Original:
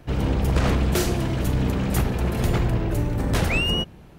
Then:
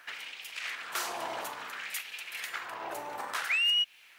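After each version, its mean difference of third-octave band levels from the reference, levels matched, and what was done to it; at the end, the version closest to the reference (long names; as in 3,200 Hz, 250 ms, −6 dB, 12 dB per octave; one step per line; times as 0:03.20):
14.0 dB: downward compressor 10 to 1, threshold −26 dBFS, peak gain reduction 11 dB
auto-filter high-pass sine 0.58 Hz 810–2,600 Hz
bit reduction 12 bits
level +1 dB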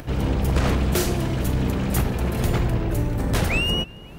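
1.5 dB: high-shelf EQ 11,000 Hz +5 dB
upward compression, threshold −30 dBFS
on a send: feedback echo with a low-pass in the loop 271 ms, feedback 49%, low-pass 3,300 Hz, level −21 dB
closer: second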